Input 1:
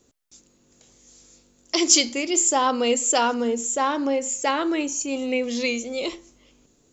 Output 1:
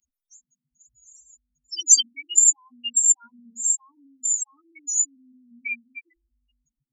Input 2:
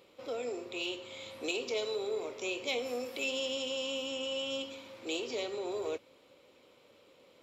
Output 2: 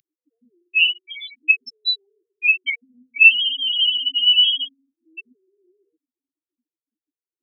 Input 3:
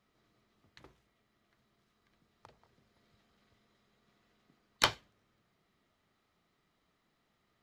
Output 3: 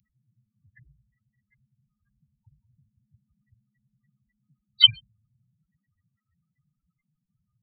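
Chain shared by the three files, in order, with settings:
spectral peaks only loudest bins 4
Chebyshev band-stop filter 140–2,400 Hz, order 3
spectral tilt +3 dB per octave
normalise the peak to −2 dBFS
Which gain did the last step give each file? +5.0, +25.0, +24.0 decibels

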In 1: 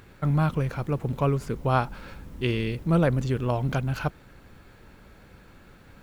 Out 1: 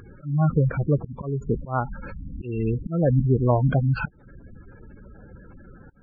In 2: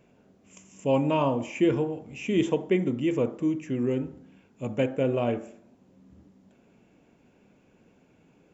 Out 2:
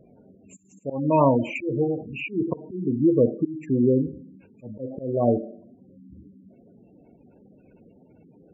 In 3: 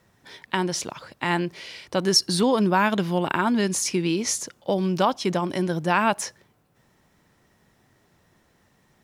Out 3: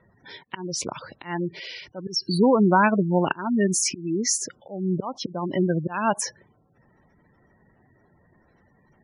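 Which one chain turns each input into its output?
volume swells 301 ms
gate on every frequency bin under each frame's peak −15 dB strong
loudness normalisation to −24 LKFS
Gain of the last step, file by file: +6.5, +7.5, +3.0 decibels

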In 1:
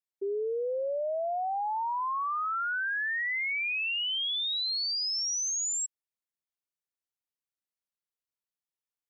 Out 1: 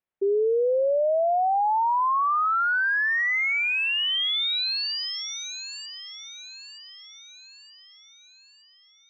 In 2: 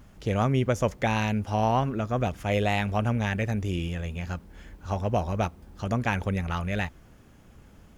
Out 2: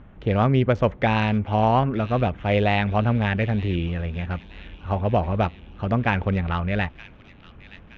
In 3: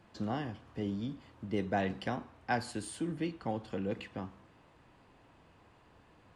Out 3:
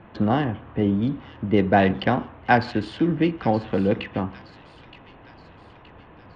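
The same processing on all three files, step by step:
adaptive Wiener filter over 9 samples
low-pass filter 4,300 Hz 24 dB per octave
delay with a high-pass on its return 921 ms, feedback 51%, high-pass 3,000 Hz, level −10 dB
loudness normalisation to −23 LKFS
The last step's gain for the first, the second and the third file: +9.0, +5.0, +14.5 decibels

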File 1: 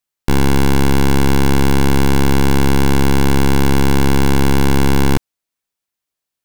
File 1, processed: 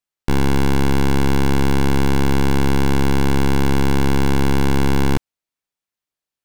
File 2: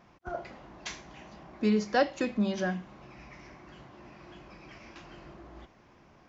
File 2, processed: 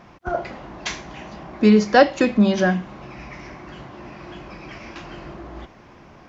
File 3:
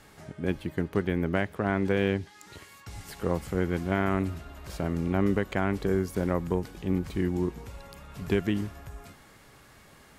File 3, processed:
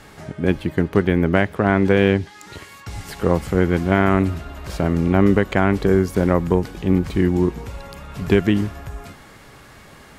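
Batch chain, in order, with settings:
high-shelf EQ 6,700 Hz −5.5 dB
loudness normalisation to −19 LKFS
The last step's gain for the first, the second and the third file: −3.5, +12.0, +10.5 decibels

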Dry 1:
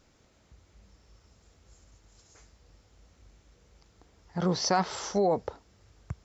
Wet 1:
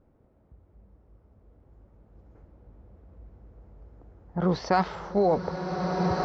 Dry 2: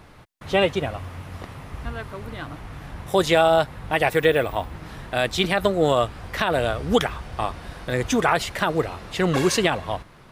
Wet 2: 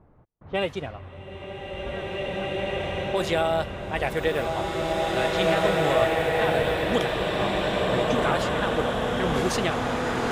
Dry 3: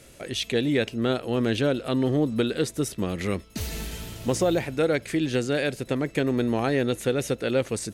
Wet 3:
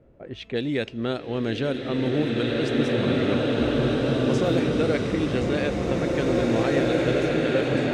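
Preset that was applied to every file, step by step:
low-pass that shuts in the quiet parts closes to 720 Hz, open at −16.5 dBFS
slow-attack reverb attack 2,360 ms, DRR −5 dB
normalise the peak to −9 dBFS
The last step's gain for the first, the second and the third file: +2.5, −7.0, −2.5 decibels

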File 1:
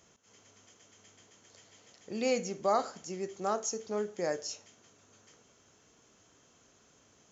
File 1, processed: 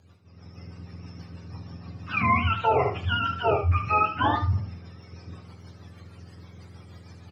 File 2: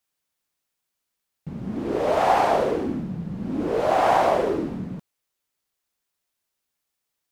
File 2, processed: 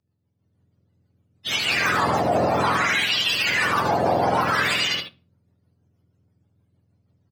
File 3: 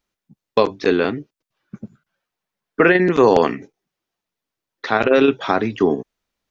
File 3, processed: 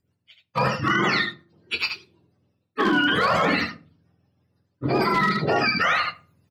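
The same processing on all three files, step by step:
frequency axis turned over on the octave scale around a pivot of 730 Hz
hard clipping −10 dBFS
rotating-speaker cabinet horn 6.3 Hz
parametric band 4,700 Hz +6.5 dB 0.41 octaves
rectangular room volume 280 cubic metres, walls furnished, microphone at 0.33 metres
reversed playback
downward compressor 6 to 1, threshold −33 dBFS
reversed playback
low-shelf EQ 330 Hz −5.5 dB
on a send: ambience of single reflections 24 ms −12.5 dB, 76 ms −8.5 dB
on the sum: automatic gain control gain up to 10.5 dB
brickwall limiter −19.5 dBFS
normalise the peak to −12 dBFS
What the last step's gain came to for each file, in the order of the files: +7.5, +7.5, +7.5 decibels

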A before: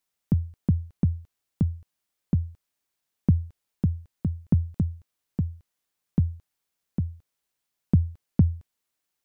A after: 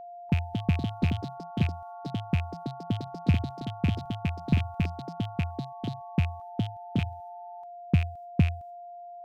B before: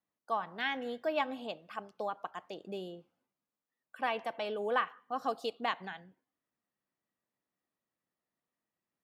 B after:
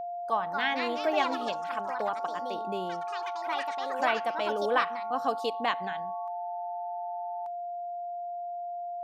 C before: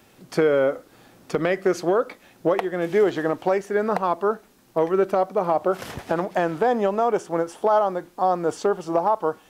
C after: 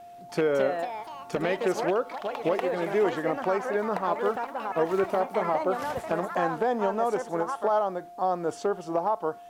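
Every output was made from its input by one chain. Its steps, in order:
loose part that buzzes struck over −23 dBFS, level −21 dBFS
noise gate with hold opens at −52 dBFS
steady tone 700 Hz −38 dBFS
delay with pitch and tempo change per echo 294 ms, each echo +4 semitones, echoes 3, each echo −6 dB
normalise the peak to −12 dBFS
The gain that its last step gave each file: −3.0, +4.5, −5.5 decibels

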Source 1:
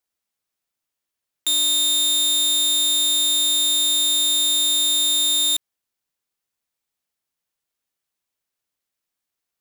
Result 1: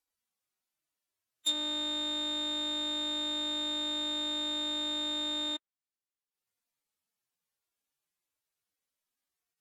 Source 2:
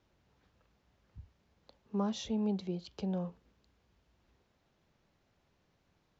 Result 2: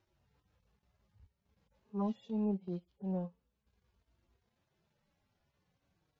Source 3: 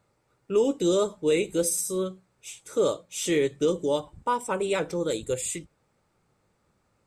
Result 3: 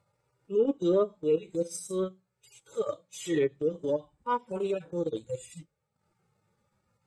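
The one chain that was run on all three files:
harmonic-percussive split with one part muted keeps harmonic
transient designer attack −6 dB, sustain −10 dB
treble cut that deepens with the level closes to 1,700 Hz, closed at −19.5 dBFS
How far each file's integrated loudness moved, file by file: −15.5, −2.0, −4.0 LU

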